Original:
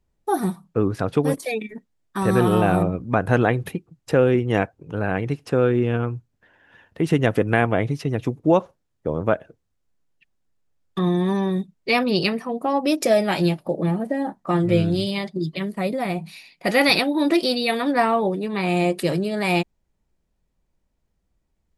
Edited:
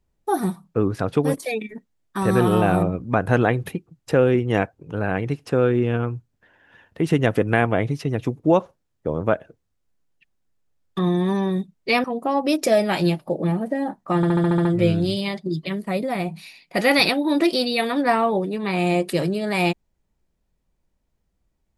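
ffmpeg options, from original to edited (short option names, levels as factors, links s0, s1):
-filter_complex "[0:a]asplit=9[s0][s1][s2][s3][s4][s5][s6][s7][s8];[s0]atrim=end=12.042[s9];[s1]atrim=start=12.428:end=14.622[s10];[s2]atrim=start=14.548:end=14.622[s11];[s3]atrim=start=14.548:end=14.622[s12];[s4]atrim=start=14.548:end=14.622[s13];[s5]atrim=start=14.548:end=14.622[s14];[s6]atrim=start=14.548:end=14.622[s15];[s7]atrim=start=14.548:end=14.622[s16];[s8]atrim=start=14.548[s17];[s9][s10]acrossfade=d=0.004:c1=hsin:c2=hsin[s18];[s18][s11]acrossfade=d=0.004:c1=hsin:c2=hsin[s19];[s19][s12]acrossfade=d=0.004:c1=hsin:c2=hsin[s20];[s20][s13]acrossfade=d=0.004:c1=hsin:c2=hsin[s21];[s21][s14]acrossfade=d=0.004:c1=hsin:c2=hsin[s22];[s22][s15]acrossfade=d=0.004:c1=hsin:c2=hsin[s23];[s23][s16]acrossfade=d=0.004:c1=hsin:c2=hsin[s24];[s24][s17]acrossfade=d=0.004:c1=hsin:c2=hsin"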